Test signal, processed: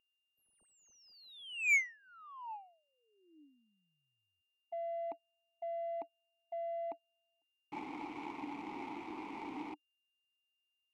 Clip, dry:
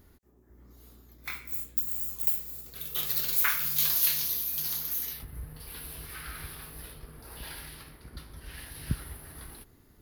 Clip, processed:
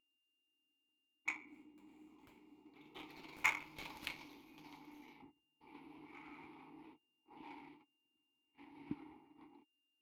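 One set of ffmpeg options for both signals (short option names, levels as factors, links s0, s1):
-filter_complex "[0:a]aemphasis=mode=production:type=riaa,agate=range=0.0251:threshold=0.0282:ratio=16:detection=peak,asplit=3[s0][s1][s2];[s0]bandpass=f=300:t=q:w=8,volume=1[s3];[s1]bandpass=f=870:t=q:w=8,volume=0.501[s4];[s2]bandpass=f=2240:t=q:w=8,volume=0.355[s5];[s3][s4][s5]amix=inputs=3:normalize=0,lowshelf=f=420:g=-4.5,crystalizer=i=1:c=0,aeval=exprs='val(0)+0.000178*sin(2*PI*2800*n/s)':c=same,adynamicsmooth=sensitivity=7.5:basefreq=860,volume=5.01"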